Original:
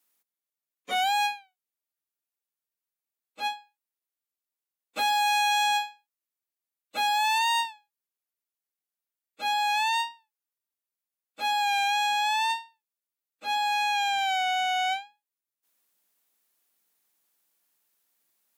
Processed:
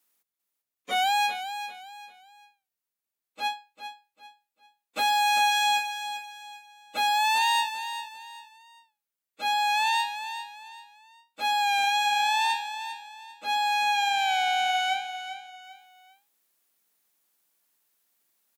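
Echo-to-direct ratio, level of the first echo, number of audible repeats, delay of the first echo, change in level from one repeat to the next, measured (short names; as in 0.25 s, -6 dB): -10.0 dB, -10.5 dB, 3, 0.396 s, -10.0 dB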